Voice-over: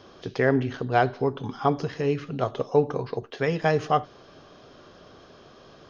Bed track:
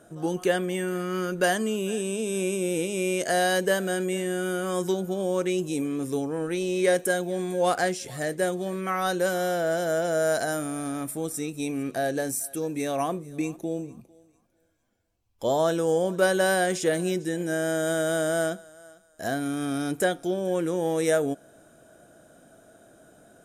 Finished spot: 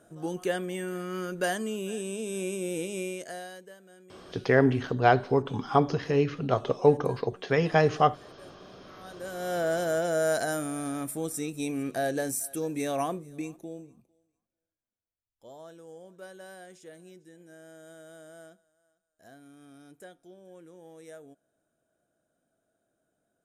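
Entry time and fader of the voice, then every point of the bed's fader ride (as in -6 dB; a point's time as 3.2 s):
4.10 s, +0.5 dB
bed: 2.98 s -5.5 dB
3.75 s -27 dB
8.91 s -27 dB
9.58 s -2 dB
12.99 s -2 dB
14.86 s -24 dB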